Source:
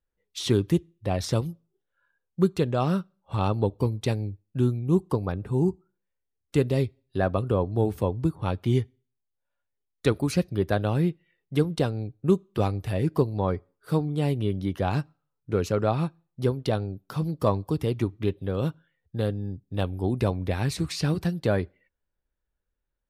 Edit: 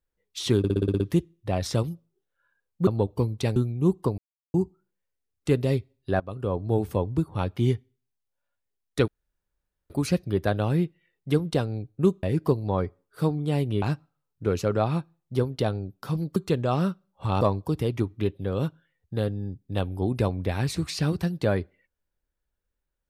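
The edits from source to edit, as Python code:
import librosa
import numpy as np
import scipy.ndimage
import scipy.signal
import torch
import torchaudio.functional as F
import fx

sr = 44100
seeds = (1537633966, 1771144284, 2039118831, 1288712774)

y = fx.edit(x, sr, fx.stutter(start_s=0.58, slice_s=0.06, count=8),
    fx.move(start_s=2.45, length_s=1.05, to_s=17.43),
    fx.cut(start_s=4.19, length_s=0.44),
    fx.silence(start_s=5.25, length_s=0.36),
    fx.fade_in_from(start_s=7.27, length_s=0.68, curve='qsin', floor_db=-19.5),
    fx.insert_room_tone(at_s=10.15, length_s=0.82),
    fx.cut(start_s=12.48, length_s=0.45),
    fx.cut(start_s=14.52, length_s=0.37), tone=tone)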